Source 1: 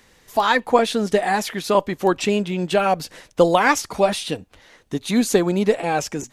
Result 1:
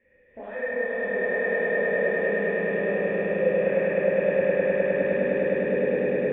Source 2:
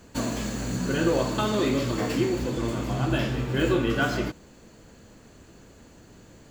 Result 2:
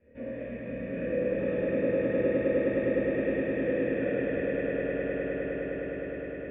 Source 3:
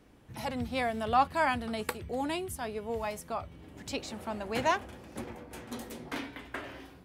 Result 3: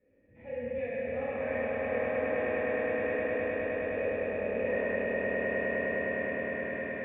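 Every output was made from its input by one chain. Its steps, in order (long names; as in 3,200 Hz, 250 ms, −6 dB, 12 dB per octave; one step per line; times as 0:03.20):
peak hold with a decay on every bin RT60 1.59 s
low-pass filter 3,200 Hz 24 dB per octave
parametric band 970 Hz −9.5 dB 1.8 octaves
downward compressor, threshold −25 dBFS
hard clipping −21.5 dBFS
formant resonators in series e
on a send: echo that builds up and dies away 103 ms, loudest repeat 8, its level −4 dB
on the sum: reverb whose tail is shaped and stops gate 440 ms falling, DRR −5.5 dB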